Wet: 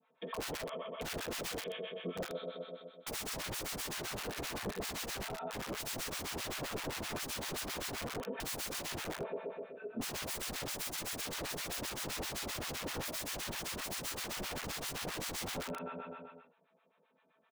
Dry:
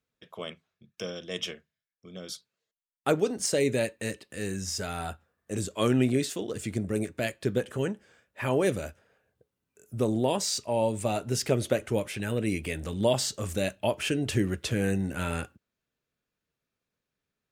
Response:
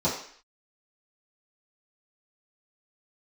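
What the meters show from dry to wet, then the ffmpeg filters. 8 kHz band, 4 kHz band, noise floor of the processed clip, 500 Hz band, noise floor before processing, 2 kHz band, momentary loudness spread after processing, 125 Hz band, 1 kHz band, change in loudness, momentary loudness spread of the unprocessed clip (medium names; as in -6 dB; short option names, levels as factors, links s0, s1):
-4.5 dB, -3.5 dB, -73 dBFS, -13.5 dB, under -85 dBFS, -4.5 dB, 4 LU, -16.0 dB, -6.5 dB, -10.0 dB, 14 LU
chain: -filter_complex "[0:a]highpass=550,aecho=1:1:4.5:0.51,aecho=1:1:126|252|378|504|630|756|882|1008:0.473|0.274|0.159|0.0923|0.0535|0.0311|0.018|0.0104[s0];[1:a]atrim=start_sample=2205,atrim=end_sample=4410[s1];[s0][s1]afir=irnorm=-1:irlink=0,aresample=8000,aeval=exprs='1*sin(PI/2*1.78*val(0)/1)':c=same,aresample=44100,lowpass=f=2600:p=1,aeval=exprs='(mod(7.08*val(0)+1,2)-1)/7.08':c=same,acompressor=threshold=0.0178:ratio=2.5,acrossover=split=760[s2][s3];[s2]aeval=exprs='val(0)*(1-1/2+1/2*cos(2*PI*7.7*n/s))':c=same[s4];[s3]aeval=exprs='val(0)*(1-1/2-1/2*cos(2*PI*7.7*n/s))':c=same[s5];[s4][s5]amix=inputs=2:normalize=0,alimiter=level_in=1.88:limit=0.0631:level=0:latency=1:release=25,volume=0.531"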